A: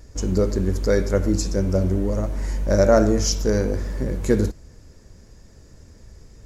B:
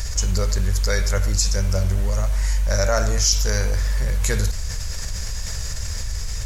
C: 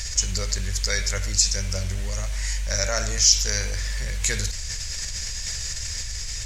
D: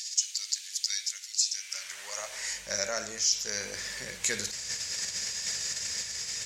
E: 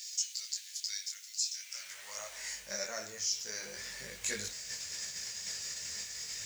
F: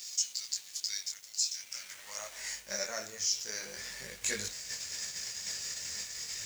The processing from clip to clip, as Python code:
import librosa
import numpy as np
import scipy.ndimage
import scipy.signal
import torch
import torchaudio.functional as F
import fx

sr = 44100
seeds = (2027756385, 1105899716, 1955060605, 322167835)

y1 = fx.tone_stack(x, sr, knobs='10-0-10')
y1 = fx.env_flatten(y1, sr, amount_pct=70)
y1 = y1 * librosa.db_to_amplitude(5.5)
y2 = fx.band_shelf(y1, sr, hz=3900.0, db=10.5, octaves=2.6)
y2 = y2 * librosa.db_to_amplitude(-7.5)
y3 = fx.rider(y2, sr, range_db=4, speed_s=0.5)
y3 = fx.filter_sweep_highpass(y3, sr, from_hz=3600.0, to_hz=250.0, start_s=1.46, end_s=2.67, q=1.2)
y3 = y3 * librosa.db_to_amplitude(-6.0)
y4 = fx.dmg_noise_colour(y3, sr, seeds[0], colour='violet', level_db=-53.0)
y4 = fx.detune_double(y4, sr, cents=16)
y4 = y4 * librosa.db_to_amplitude(-3.0)
y5 = np.sign(y4) * np.maximum(np.abs(y4) - 10.0 ** (-54.5 / 20.0), 0.0)
y5 = y5 * librosa.db_to_amplitude(3.0)